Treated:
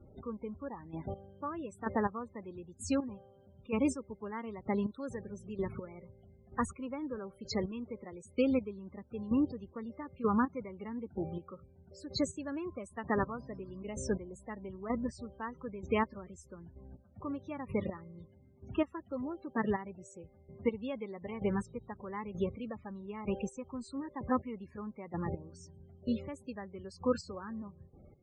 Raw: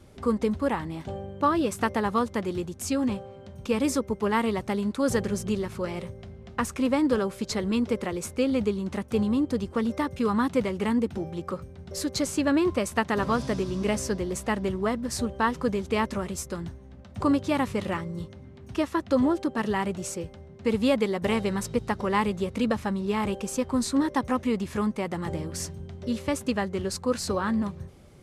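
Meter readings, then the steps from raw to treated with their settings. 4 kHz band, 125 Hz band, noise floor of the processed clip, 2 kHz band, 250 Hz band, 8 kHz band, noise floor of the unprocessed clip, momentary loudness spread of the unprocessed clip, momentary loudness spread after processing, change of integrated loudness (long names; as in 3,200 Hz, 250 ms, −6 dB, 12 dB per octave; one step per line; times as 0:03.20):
−13.5 dB, −10.0 dB, −61 dBFS, −12.0 dB, −10.0 dB, −15.0 dB, −47 dBFS, 11 LU, 17 LU, −10.0 dB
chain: gate pattern "xx......." 145 BPM −12 dB
spectral peaks only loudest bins 32
level −4 dB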